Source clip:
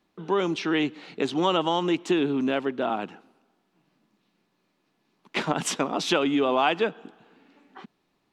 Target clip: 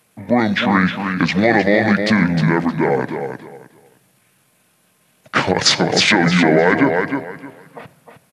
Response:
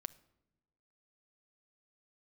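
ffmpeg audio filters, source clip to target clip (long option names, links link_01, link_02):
-filter_complex "[0:a]aemphasis=mode=production:type=bsi,asetrate=26990,aresample=44100,atempo=1.63392,aecho=1:1:309|618|927:0.422|0.0928|0.0204,asplit=2[link_01][link_02];[1:a]atrim=start_sample=2205[link_03];[link_02][link_03]afir=irnorm=-1:irlink=0,volume=15.5dB[link_04];[link_01][link_04]amix=inputs=2:normalize=0,alimiter=level_in=-1.5dB:limit=-1dB:release=50:level=0:latency=1,volume=-1dB"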